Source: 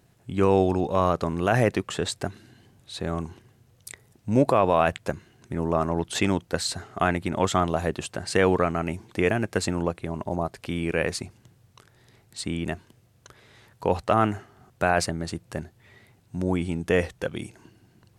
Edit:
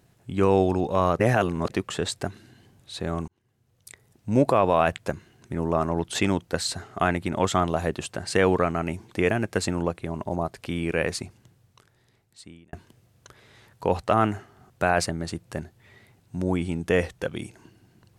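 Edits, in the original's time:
1.19–1.7 reverse
3.28–4.38 fade in
11.22–12.73 fade out

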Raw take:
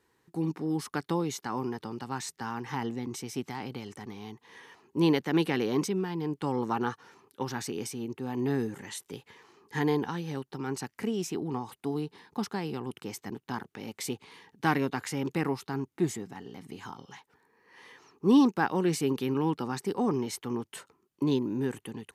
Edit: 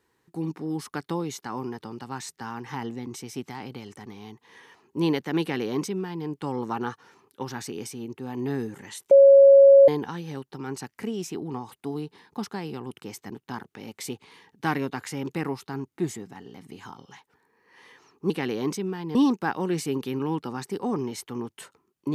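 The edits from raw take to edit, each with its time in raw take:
5.41–6.26 copy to 18.3
9.11–9.88 bleep 552 Hz -9 dBFS

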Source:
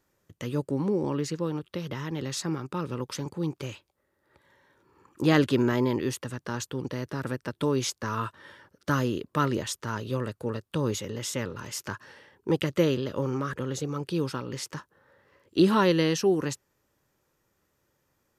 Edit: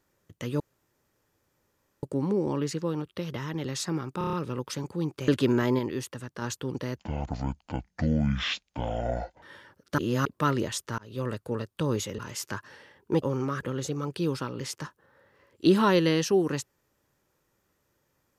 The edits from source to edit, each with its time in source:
0.6 insert room tone 1.43 s
2.75 stutter 0.03 s, 6 plays
3.7–5.38 cut
5.89–6.52 gain -3.5 dB
7.07–8.37 speed 53%
8.93–9.2 reverse
9.93–10.23 fade in
11.13–11.55 cut
12.59–13.15 cut

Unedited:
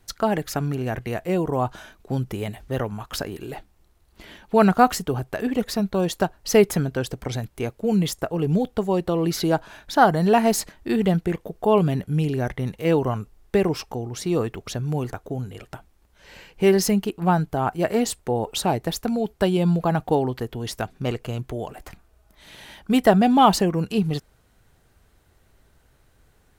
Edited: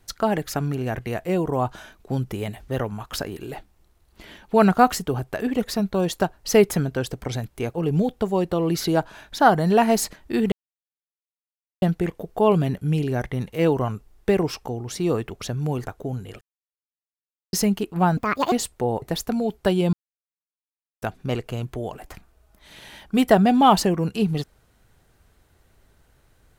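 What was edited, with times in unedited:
7.74–8.3 cut
11.08 insert silence 1.30 s
15.67–16.79 mute
17.43–17.99 speed 160%
18.49–18.78 cut
19.69–20.78 mute

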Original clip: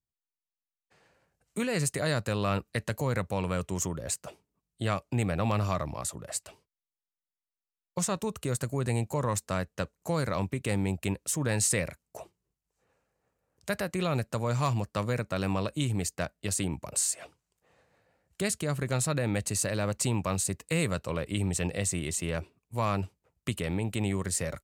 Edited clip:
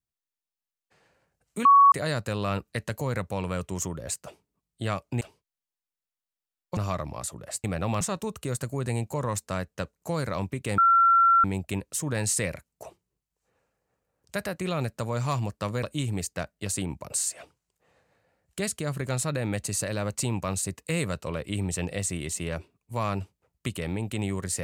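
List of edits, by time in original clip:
1.65–1.92 bleep 1120 Hz -12 dBFS
5.21–5.58 swap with 6.45–8.01
10.78 add tone 1360 Hz -15.5 dBFS 0.66 s
15.17–15.65 cut

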